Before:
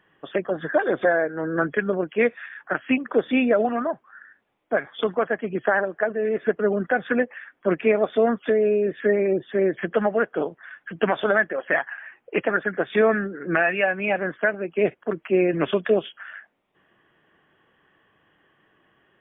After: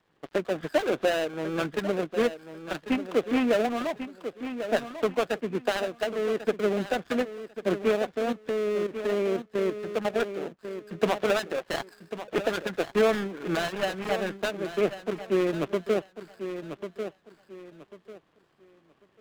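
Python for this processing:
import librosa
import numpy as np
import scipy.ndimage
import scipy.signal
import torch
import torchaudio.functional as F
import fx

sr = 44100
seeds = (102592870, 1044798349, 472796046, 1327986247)

y = fx.dead_time(x, sr, dead_ms=0.26)
y = fx.level_steps(y, sr, step_db=11, at=(8.02, 10.59))
y = fx.lowpass(y, sr, hz=2700.0, slope=6)
y = fx.echo_feedback(y, sr, ms=1094, feedback_pct=21, wet_db=-11)
y = fx.rider(y, sr, range_db=3, speed_s=2.0)
y = y * 10.0 ** (-3.5 / 20.0)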